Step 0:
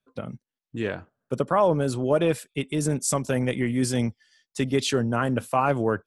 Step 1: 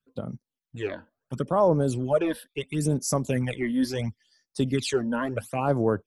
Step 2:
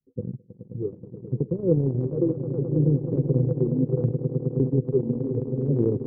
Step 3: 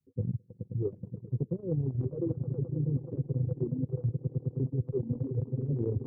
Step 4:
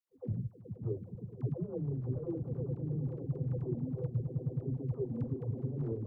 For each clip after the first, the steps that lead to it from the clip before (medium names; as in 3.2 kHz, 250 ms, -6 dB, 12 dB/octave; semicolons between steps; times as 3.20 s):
phase shifter stages 12, 0.73 Hz, lowest notch 120–3100 Hz
rippled Chebyshev low-pass 510 Hz, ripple 6 dB; echo with a slow build-up 106 ms, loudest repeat 8, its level -12.5 dB; transient shaper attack +3 dB, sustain -8 dB; trim +4.5 dB
reverb removal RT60 1.3 s; peaking EQ 100 Hz +10.5 dB 1.2 oct; reverse; compression 6:1, threshold -28 dBFS, peak gain reduction 16 dB; reverse
transient shaper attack +6 dB, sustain +10 dB; phase dispersion lows, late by 118 ms, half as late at 390 Hz; trim -8 dB